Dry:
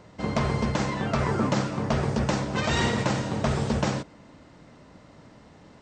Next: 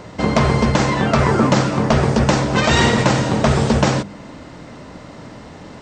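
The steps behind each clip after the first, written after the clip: notches 50/100/150/200 Hz; in parallel at 0 dB: compressor, threshold -34 dBFS, peak gain reduction 13 dB; on the sum: gain +8.5 dB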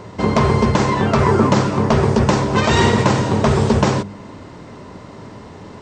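thirty-one-band EQ 100 Hz +10 dB, 200 Hz +4 dB, 400 Hz +8 dB, 1000 Hz +6 dB; gain -2.5 dB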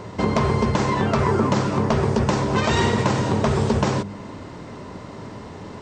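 compressor 2:1, threshold -20 dBFS, peak gain reduction 6.5 dB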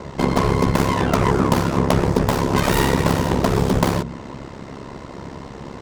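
tracing distortion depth 0.26 ms; ring modulator 34 Hz; gain +5 dB

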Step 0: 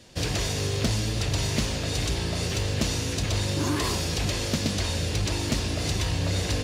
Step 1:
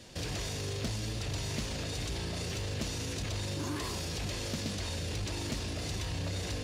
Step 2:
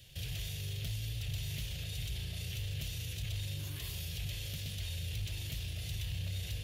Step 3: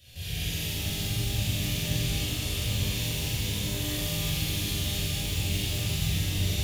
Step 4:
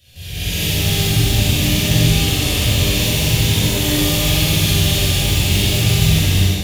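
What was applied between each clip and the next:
limiter -28.5 dBFS, peak gain reduction 10.5 dB
EQ curve 140 Hz 0 dB, 250 Hz -22 dB, 410 Hz -15 dB, 690 Hz -14 dB, 1000 Hz -21 dB, 3200 Hz +2 dB, 4700 Hz -8 dB, 8400 Hz -6 dB, 13000 Hz +10 dB; gain -1 dB
on a send: flutter echo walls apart 7.5 m, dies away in 0.8 s; on the sum: shimmer reverb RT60 3.3 s, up +12 st, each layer -8 dB, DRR -11.5 dB; gain -2.5 dB
AGC gain up to 10.5 dB; tape echo 65 ms, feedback 84%, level -3.5 dB, low-pass 2400 Hz; gain +2.5 dB

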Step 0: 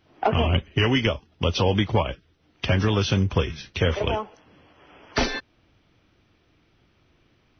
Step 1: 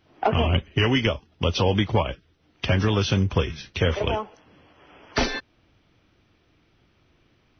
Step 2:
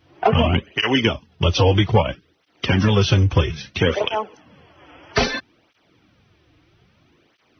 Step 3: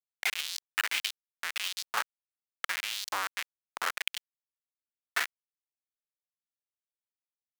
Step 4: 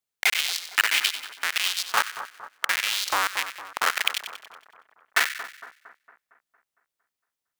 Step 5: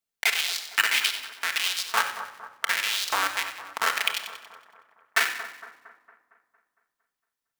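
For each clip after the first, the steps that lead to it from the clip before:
nothing audible
tape flanging out of phase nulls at 0.61 Hz, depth 5.2 ms; gain +7.5 dB
Schmitt trigger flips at -14 dBFS; LFO high-pass saw up 1.6 Hz 960–5400 Hz; gain -1.5 dB
split-band echo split 1500 Hz, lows 0.229 s, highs 93 ms, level -11 dB; gain +8.5 dB
reverb RT60 0.80 s, pre-delay 4 ms, DRR 5 dB; gain -2 dB

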